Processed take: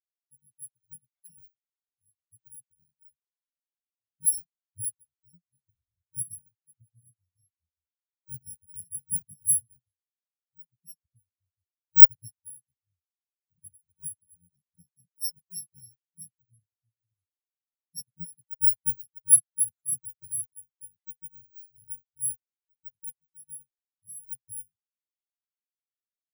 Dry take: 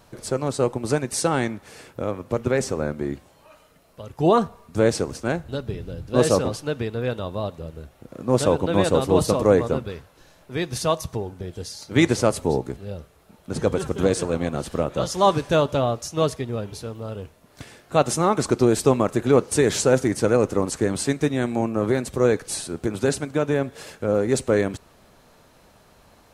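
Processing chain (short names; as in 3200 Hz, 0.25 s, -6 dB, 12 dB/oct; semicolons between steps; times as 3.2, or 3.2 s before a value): FFT order left unsorted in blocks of 128 samples; spectral expander 4:1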